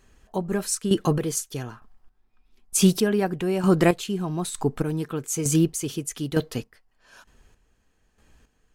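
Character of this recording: chopped level 1.1 Hz, depth 65%, duty 30%

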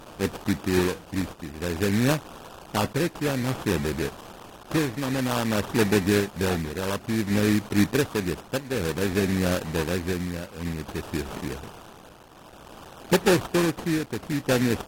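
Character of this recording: a quantiser's noise floor 8-bit, dither triangular; tremolo triangle 0.55 Hz, depth 65%; aliases and images of a low sample rate 2.1 kHz, jitter 20%; AAC

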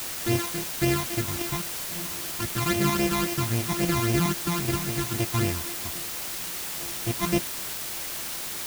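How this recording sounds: a buzz of ramps at a fixed pitch in blocks of 128 samples; phasing stages 12, 3.7 Hz, lowest notch 480–1400 Hz; a quantiser's noise floor 6-bit, dither triangular

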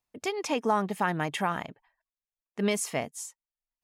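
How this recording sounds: noise floor -96 dBFS; spectral tilt -4.0 dB/octave

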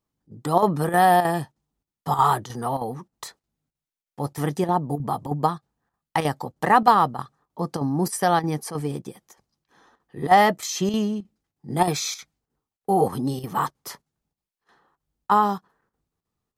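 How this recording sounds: chopped level 3.2 Hz, depth 60%, duty 85%

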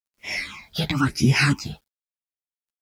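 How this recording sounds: phasing stages 8, 0.98 Hz, lowest notch 310–1300 Hz; a quantiser's noise floor 12-bit, dither none; tremolo triangle 0.77 Hz, depth 35%; a shimmering, thickened sound

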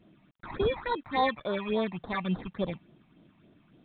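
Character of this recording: aliases and images of a low sample rate 2.9 kHz, jitter 0%; phasing stages 8, 3.5 Hz, lowest notch 430–2300 Hz; a quantiser's noise floor 12-bit, dither none; µ-law

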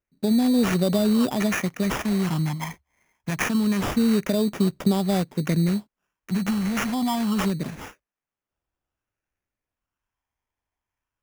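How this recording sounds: phasing stages 8, 0.26 Hz, lowest notch 420–1700 Hz; aliases and images of a low sample rate 4.2 kHz, jitter 0%

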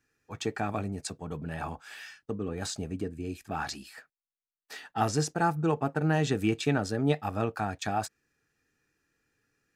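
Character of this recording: noise floor -96 dBFS; spectral tilt -5.5 dB/octave

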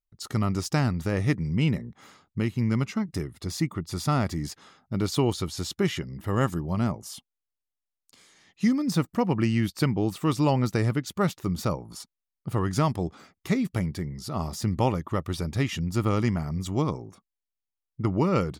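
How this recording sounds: noise floor -87 dBFS; spectral tilt -6.5 dB/octave

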